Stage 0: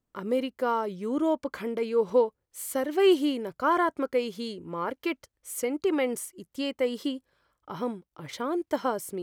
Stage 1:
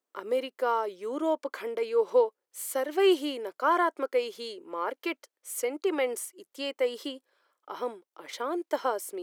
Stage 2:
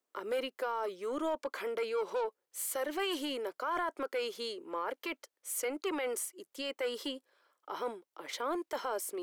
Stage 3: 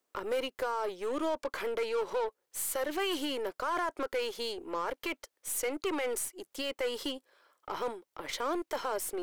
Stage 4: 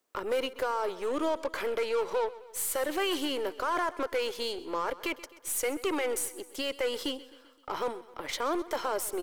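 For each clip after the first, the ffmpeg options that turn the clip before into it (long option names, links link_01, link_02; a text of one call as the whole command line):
ffmpeg -i in.wav -af "highpass=frequency=350:width=0.5412,highpass=frequency=350:width=1.3066" out.wav
ffmpeg -i in.wav -filter_complex "[0:a]acrossover=split=670|1700[link_01][link_02][link_03];[link_01]asoftclip=type=tanh:threshold=-34dB[link_04];[link_04][link_02][link_03]amix=inputs=3:normalize=0,alimiter=level_in=2.5dB:limit=-24dB:level=0:latency=1:release=21,volume=-2.5dB" out.wav
ffmpeg -i in.wav -filter_complex "[0:a]aeval=exprs='0.0501*(cos(1*acos(clip(val(0)/0.0501,-1,1)))-cos(1*PI/2))+0.00282*(cos(8*acos(clip(val(0)/0.0501,-1,1)))-cos(8*PI/2))':channel_layout=same,asplit=2[link_01][link_02];[link_02]acompressor=threshold=-43dB:ratio=6,volume=-1.5dB[link_03];[link_01][link_03]amix=inputs=2:normalize=0" out.wav
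ffmpeg -i in.wav -af "aecho=1:1:130|260|390|520|650:0.126|0.0692|0.0381|0.0209|0.0115,volume=2.5dB" out.wav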